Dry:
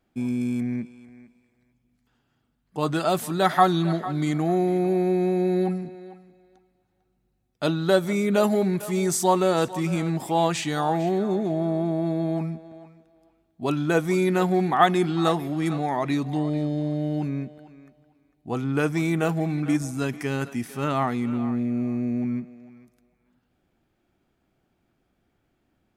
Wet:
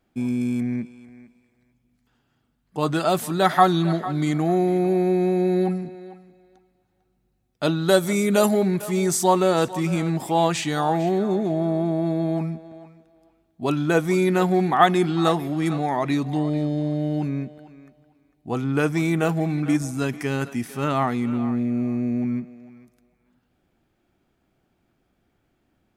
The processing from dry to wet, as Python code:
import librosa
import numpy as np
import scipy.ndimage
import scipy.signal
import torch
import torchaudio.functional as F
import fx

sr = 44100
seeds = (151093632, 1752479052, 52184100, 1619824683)

y = fx.peak_eq(x, sr, hz=9900.0, db=9.5, octaves=1.6, at=(7.88, 8.51))
y = y * 10.0 ** (2.0 / 20.0)